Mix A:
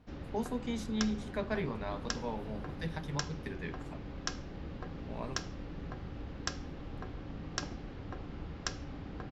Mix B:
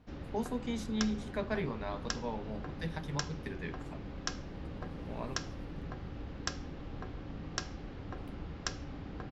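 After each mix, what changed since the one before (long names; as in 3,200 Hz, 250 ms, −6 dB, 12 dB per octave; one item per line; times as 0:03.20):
second sound: entry +2.90 s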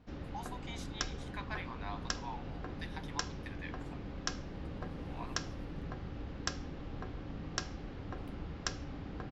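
speech: add Chebyshev high-pass with heavy ripple 690 Hz, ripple 3 dB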